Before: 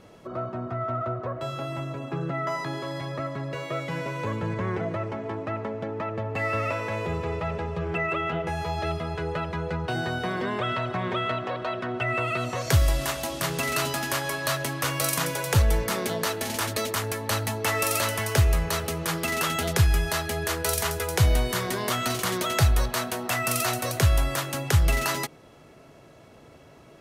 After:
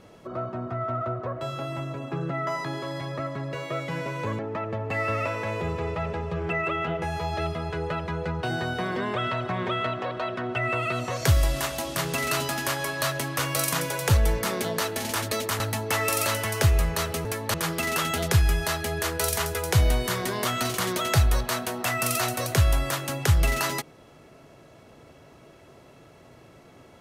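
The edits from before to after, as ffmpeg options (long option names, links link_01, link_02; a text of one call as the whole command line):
ffmpeg -i in.wav -filter_complex "[0:a]asplit=5[link_01][link_02][link_03][link_04][link_05];[link_01]atrim=end=4.392[link_06];[link_02]atrim=start=5.838:end=17.052[link_07];[link_03]atrim=start=17.338:end=18.992[link_08];[link_04]atrim=start=17.048:end=17.342[link_09];[link_05]atrim=start=18.988[link_10];[link_06][link_07]acrossfade=duration=0.004:curve1=hsin:curve2=hsin[link_11];[link_11][link_08]acrossfade=duration=0.004:curve1=hsin:curve2=hsin[link_12];[link_12][link_09]acrossfade=duration=0.004:curve1=hsin:curve2=hsin[link_13];[link_13][link_10]acrossfade=duration=0.004:curve1=hsin:curve2=hsin" out.wav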